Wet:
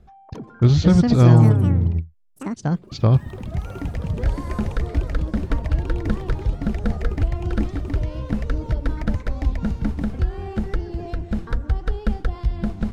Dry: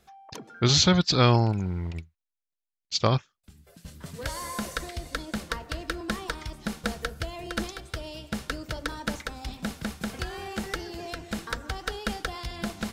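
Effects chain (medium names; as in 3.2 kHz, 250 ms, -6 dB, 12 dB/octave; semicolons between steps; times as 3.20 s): tilt EQ -4.5 dB/octave; in parallel at -2.5 dB: compression, threshold -24 dBFS, peak gain reduction 17 dB; on the sum: ever faster or slower copies 379 ms, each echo +5 st, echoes 3, each echo -6 dB; trim -4.5 dB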